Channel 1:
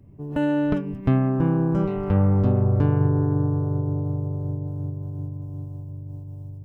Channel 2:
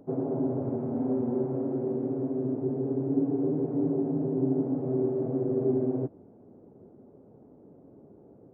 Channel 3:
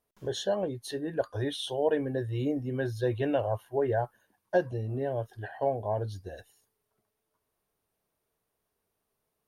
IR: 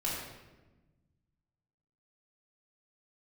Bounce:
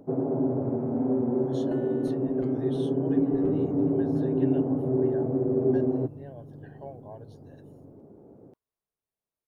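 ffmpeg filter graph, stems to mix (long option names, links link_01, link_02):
-filter_complex "[0:a]aecho=1:1:6.2:0.91,acompressor=threshold=-20dB:ratio=6,adelay=1350,volume=-17.5dB[link_01];[1:a]volume=2.5dB[link_02];[2:a]adelay=1200,volume=-14dB[link_03];[link_01][link_02][link_03]amix=inputs=3:normalize=0"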